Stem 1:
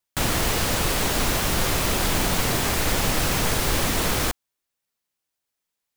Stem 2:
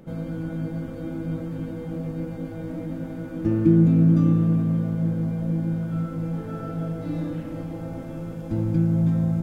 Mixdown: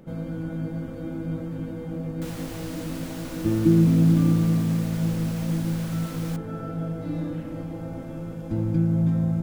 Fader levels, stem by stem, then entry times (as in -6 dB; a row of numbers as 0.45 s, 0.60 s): -18.0 dB, -1.0 dB; 2.05 s, 0.00 s